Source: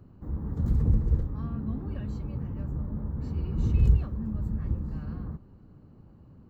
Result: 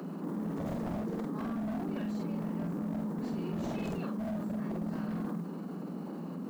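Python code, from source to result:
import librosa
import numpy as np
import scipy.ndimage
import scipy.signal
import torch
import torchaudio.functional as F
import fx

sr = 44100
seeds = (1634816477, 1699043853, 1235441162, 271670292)

p1 = scipy.signal.sosfilt(scipy.signal.cheby1(6, 1.0, 170.0, 'highpass', fs=sr, output='sos'), x)
p2 = fx.rider(p1, sr, range_db=4, speed_s=0.5)
p3 = p1 + (p2 * 10.0 ** (-2.0 / 20.0))
p4 = 10.0 ** (-29.5 / 20.0) * (np.abs((p3 / 10.0 ** (-29.5 / 20.0) + 3.0) % 4.0 - 2.0) - 1.0)
p5 = fx.mod_noise(p4, sr, seeds[0], snr_db=32)
p6 = fx.doubler(p5, sr, ms=47.0, db=-2.5)
p7 = fx.env_flatten(p6, sr, amount_pct=70)
y = p7 * 10.0 ** (-4.5 / 20.0)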